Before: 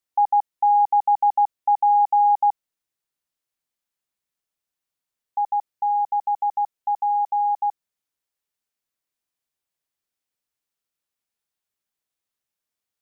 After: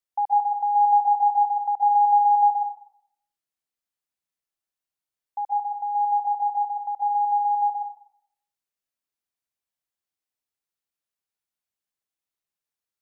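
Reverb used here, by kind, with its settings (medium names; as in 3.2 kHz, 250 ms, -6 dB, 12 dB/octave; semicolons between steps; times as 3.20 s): plate-style reverb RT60 0.64 s, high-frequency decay 0.9×, pre-delay 115 ms, DRR 4.5 dB; trim -6 dB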